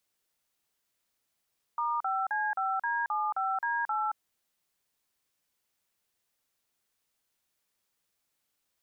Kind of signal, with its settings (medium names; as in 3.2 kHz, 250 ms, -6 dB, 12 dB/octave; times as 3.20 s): DTMF "*5C5D75D8", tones 224 ms, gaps 40 ms, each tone -30 dBFS